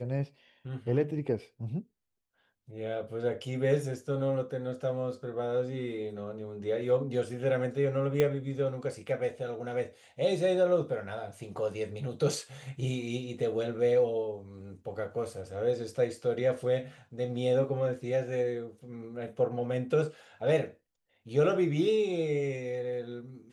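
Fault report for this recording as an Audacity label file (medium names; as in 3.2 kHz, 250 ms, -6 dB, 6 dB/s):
8.200000	8.200000	pop -14 dBFS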